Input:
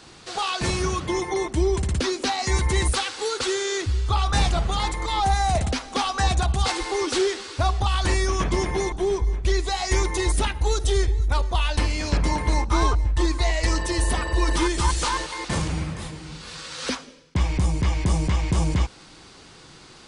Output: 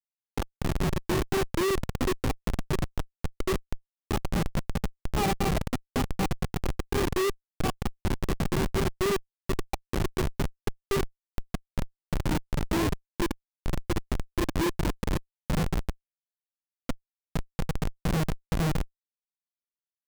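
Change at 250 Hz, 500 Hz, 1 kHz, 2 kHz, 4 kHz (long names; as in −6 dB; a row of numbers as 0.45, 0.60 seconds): −2.0, −5.0, −9.5, −8.0, −11.0 decibels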